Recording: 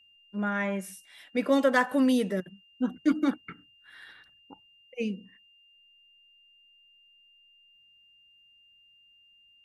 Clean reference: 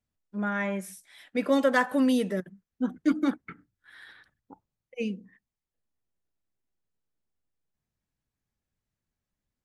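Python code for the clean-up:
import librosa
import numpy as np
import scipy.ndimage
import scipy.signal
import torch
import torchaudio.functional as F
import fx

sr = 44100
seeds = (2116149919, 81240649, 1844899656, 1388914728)

y = fx.notch(x, sr, hz=2800.0, q=30.0)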